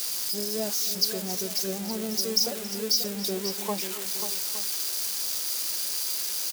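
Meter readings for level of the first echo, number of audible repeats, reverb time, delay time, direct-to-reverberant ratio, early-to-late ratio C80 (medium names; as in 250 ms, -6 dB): -19.0 dB, 3, no reverb, 274 ms, no reverb, no reverb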